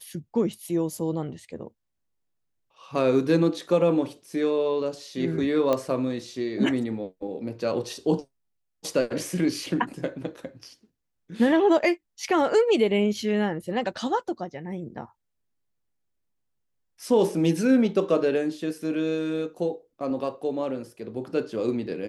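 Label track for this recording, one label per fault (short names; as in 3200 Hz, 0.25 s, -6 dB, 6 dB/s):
5.730000	5.730000	pop -12 dBFS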